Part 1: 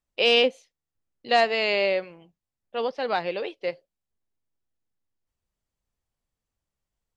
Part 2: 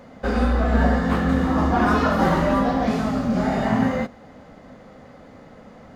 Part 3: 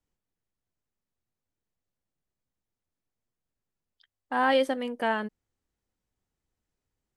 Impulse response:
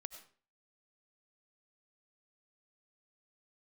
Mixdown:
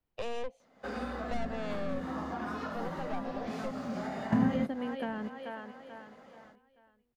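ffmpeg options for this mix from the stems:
-filter_complex "[0:a]equalizer=frequency=730:width_type=o:width=1.3:gain=15,aeval=exprs='(tanh(5.01*val(0)+0.7)-tanh(0.7))/5.01':channel_layout=same,volume=-12dB[link_01];[1:a]highpass=frequency=420:poles=1,dynaudnorm=framelen=140:gausssize=3:maxgain=10.5dB,adelay=600,volume=-4.5dB[link_02];[2:a]equalizer=frequency=6900:width=1.3:gain=-14.5,volume=0dB,asplit=3[link_03][link_04][link_05];[link_04]volume=-13.5dB[link_06];[link_05]apad=whole_len=288970[link_07];[link_02][link_07]sidechaingate=range=-14dB:threshold=-34dB:ratio=16:detection=peak[link_08];[link_06]aecho=0:1:435|870|1305|1740|2175:1|0.38|0.144|0.0549|0.0209[link_09];[link_01][link_08][link_03][link_09]amix=inputs=4:normalize=0,acrossover=split=270[link_10][link_11];[link_11]acompressor=threshold=-36dB:ratio=10[link_12];[link_10][link_12]amix=inputs=2:normalize=0"

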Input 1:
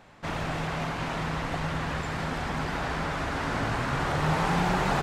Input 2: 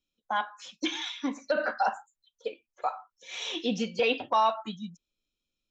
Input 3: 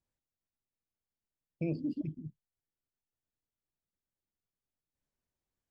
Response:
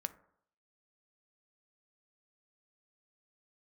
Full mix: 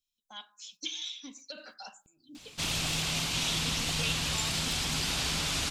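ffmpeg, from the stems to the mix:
-filter_complex "[0:a]adelay=2350,volume=-3dB[link_01];[1:a]lowshelf=frequency=140:gain=11,volume=-19dB,asplit=2[link_02][link_03];[link_03]volume=-6.5dB[link_04];[2:a]aecho=1:1:3.1:0.57,alimiter=level_in=4dB:limit=-24dB:level=0:latency=1:release=228,volume=-4dB,aeval=exprs='val(0)*pow(10,-38*if(lt(mod(-3.1*n/s,1),2*abs(-3.1)/1000),1-mod(-3.1*n/s,1)/(2*abs(-3.1)/1000),(mod(-3.1*n/s,1)-2*abs(-3.1)/1000)/(1-2*abs(-3.1)/1000))/20)':channel_layout=same,adelay=450,volume=-6dB[link_05];[3:a]atrim=start_sample=2205[link_06];[link_04][link_06]afir=irnorm=-1:irlink=0[link_07];[link_01][link_02][link_05][link_07]amix=inputs=4:normalize=0,equalizer=frequency=700:width_type=o:width=2.1:gain=-6.5,aexciter=amount=7.3:drive=3.7:freq=2600"

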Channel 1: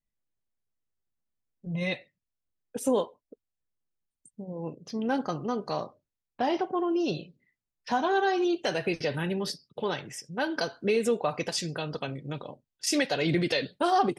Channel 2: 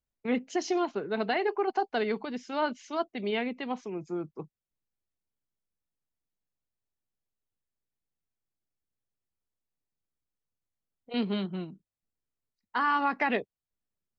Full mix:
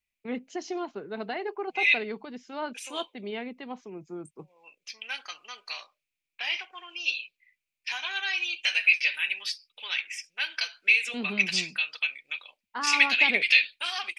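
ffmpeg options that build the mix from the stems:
ffmpeg -i stem1.wav -i stem2.wav -filter_complex "[0:a]acrossover=split=7100[link_01][link_02];[link_02]acompressor=threshold=-54dB:ratio=4:attack=1:release=60[link_03];[link_01][link_03]amix=inputs=2:normalize=0,highpass=frequency=2400:width_type=q:width=7.5,volume=2dB[link_04];[1:a]volume=-5dB[link_05];[link_04][link_05]amix=inputs=2:normalize=0" out.wav

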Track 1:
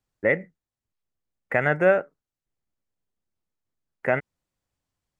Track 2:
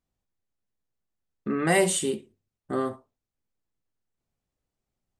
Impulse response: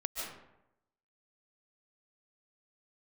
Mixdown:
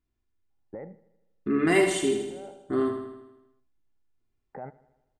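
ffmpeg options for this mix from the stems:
-filter_complex "[0:a]alimiter=limit=-21.5dB:level=0:latency=1:release=103,lowpass=frequency=800:width_type=q:width=9.5,adelay=500,volume=-5dB,asplit=2[link_01][link_02];[link_02]volume=-19.5dB[link_03];[1:a]aecho=1:1:2.9:0.6,volume=2.5dB,asplit=3[link_04][link_05][link_06];[link_05]volume=-7dB[link_07];[link_06]apad=whole_len=255555[link_08];[link_01][link_08]sidechaincompress=threshold=-32dB:ratio=8:attack=16:release=946[link_09];[link_03][link_07]amix=inputs=2:normalize=0,aecho=0:1:79|158|237|316|395|474|553|632|711:1|0.58|0.336|0.195|0.113|0.0656|0.0381|0.0221|0.0128[link_10];[link_09][link_04][link_10]amix=inputs=3:normalize=0,lowpass=frequency=2100:poles=1,equalizer=frequency=700:width_type=o:width=1:gain=-10.5"

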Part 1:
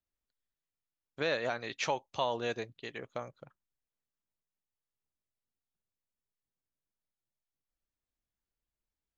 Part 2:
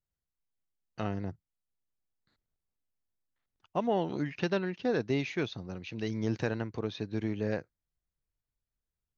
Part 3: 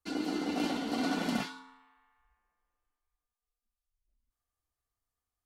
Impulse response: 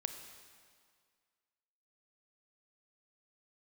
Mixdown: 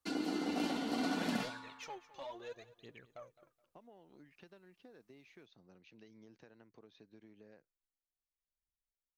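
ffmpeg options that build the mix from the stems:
-filter_complex "[0:a]aphaser=in_gain=1:out_gain=1:delay=3.8:decay=0.76:speed=0.69:type=triangular,asoftclip=type=tanh:threshold=-22dB,volume=-17dB,asplit=2[link_01][link_02];[link_02]volume=-17.5dB[link_03];[1:a]highpass=180,acompressor=threshold=-36dB:ratio=12,volume=-19dB[link_04];[2:a]highpass=75,acompressor=threshold=-46dB:ratio=1.5,volume=2.5dB[link_05];[link_03]aecho=0:1:211|422|633|844:1|0.28|0.0784|0.022[link_06];[link_01][link_04][link_05][link_06]amix=inputs=4:normalize=0"

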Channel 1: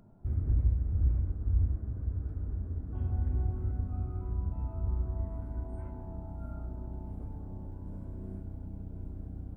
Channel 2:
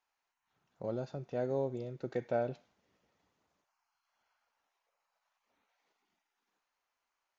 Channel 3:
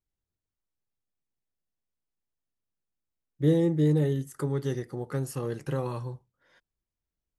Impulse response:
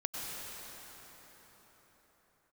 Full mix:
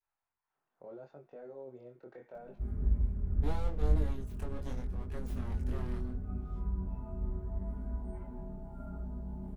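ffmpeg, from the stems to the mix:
-filter_complex "[0:a]aecho=1:1:4.9:0.88,adelay=2350,volume=0.5dB[link_01];[1:a]acrossover=split=310 2200:gain=0.224 1 0.141[link_02][link_03][link_04];[link_02][link_03][link_04]amix=inputs=3:normalize=0,alimiter=level_in=10dB:limit=-24dB:level=0:latency=1:release=10,volume=-10dB,volume=-2.5dB[link_05];[2:a]aeval=exprs='abs(val(0))':channel_layout=same,volume=-8dB[link_06];[link_01][link_05][link_06]amix=inputs=3:normalize=0,adynamicequalizer=threshold=0.00316:dfrequency=770:dqfactor=1.1:tfrequency=770:tqfactor=1.1:attack=5:release=100:ratio=0.375:range=2:mode=cutabove:tftype=bell,flanger=delay=20:depth=4.8:speed=0.76"

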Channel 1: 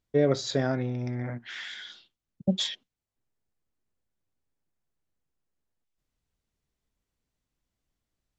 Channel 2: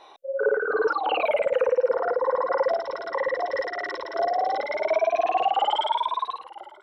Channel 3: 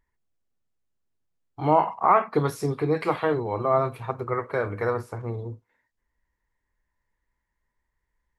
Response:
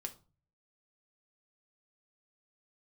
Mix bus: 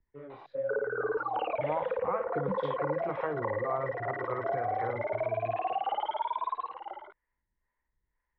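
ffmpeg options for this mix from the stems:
-filter_complex "[0:a]volume=18.5dB,asoftclip=hard,volume=-18.5dB,flanger=delay=17:depth=7.8:speed=1.5,volume=1.5dB[link_01];[1:a]adelay=300,volume=-0.5dB[link_02];[2:a]acrossover=split=440[link_03][link_04];[link_03]aeval=exprs='val(0)*(1-0.7/2+0.7/2*cos(2*PI*2*n/s))':channel_layout=same[link_05];[link_04]aeval=exprs='val(0)*(1-0.7/2-0.7/2*cos(2*PI*2*n/s))':channel_layout=same[link_06];[link_05][link_06]amix=inputs=2:normalize=0,volume=-1dB,asplit=2[link_07][link_08];[link_08]apad=whole_len=369568[link_09];[link_01][link_09]sidechaingate=range=-21dB:threshold=-38dB:ratio=16:detection=peak[link_10];[link_10][link_02][link_07]amix=inputs=3:normalize=0,lowpass=frequency=2600:width=0.5412,lowpass=frequency=2600:width=1.3066,acrossover=split=170|1600[link_11][link_12][link_13];[link_11]acompressor=threshold=-44dB:ratio=4[link_14];[link_12]acompressor=threshold=-30dB:ratio=4[link_15];[link_13]acompressor=threshold=-48dB:ratio=4[link_16];[link_14][link_15][link_16]amix=inputs=3:normalize=0"

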